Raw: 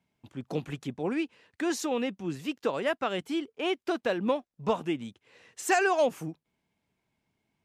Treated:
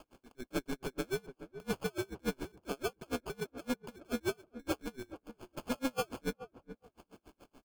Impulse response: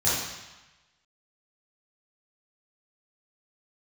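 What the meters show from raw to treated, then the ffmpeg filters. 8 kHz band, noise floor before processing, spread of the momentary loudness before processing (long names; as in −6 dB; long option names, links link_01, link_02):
−7.5 dB, −85 dBFS, 13 LU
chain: -filter_complex "[0:a]adynamicequalizer=threshold=0.00891:dfrequency=310:dqfactor=0.92:tfrequency=310:tqfactor=0.92:attack=5:release=100:ratio=0.375:range=3:mode=boostabove:tftype=bell,aexciter=amount=5.9:drive=3.5:freq=2200,acompressor=threshold=-27dB:ratio=3,aeval=exprs='val(0)*sin(2*PI*130*n/s)':channel_layout=same,equalizer=frequency=125:width_type=o:width=1:gain=-12,equalizer=frequency=250:width_type=o:width=1:gain=6,equalizer=frequency=1000:width_type=o:width=1:gain=-4,equalizer=frequency=2000:width_type=o:width=1:gain=-10,equalizer=frequency=4000:width_type=o:width=1:gain=-8,equalizer=frequency=8000:width_type=o:width=1:gain=-7,acompressor=mode=upward:threshold=-46dB:ratio=2.5,acrusher=samples=23:mix=1:aa=0.000001,asoftclip=type=tanh:threshold=-32.5dB,asplit=2[link_01][link_02];[link_02]adelay=420,lowpass=frequency=1000:poles=1,volume=-11.5dB,asplit=2[link_03][link_04];[link_04]adelay=420,lowpass=frequency=1000:poles=1,volume=0.25,asplit=2[link_05][link_06];[link_06]adelay=420,lowpass=frequency=1000:poles=1,volume=0.25[link_07];[link_01][link_03][link_05][link_07]amix=inputs=4:normalize=0,aeval=exprs='val(0)*pow(10,-35*(0.5-0.5*cos(2*PI*7*n/s))/20)':channel_layout=same,volume=7dB"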